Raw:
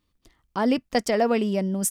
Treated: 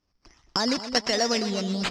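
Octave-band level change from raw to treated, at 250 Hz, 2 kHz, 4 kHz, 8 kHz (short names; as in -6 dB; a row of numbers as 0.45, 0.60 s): -4.0, +2.0, +10.5, -2.5 dB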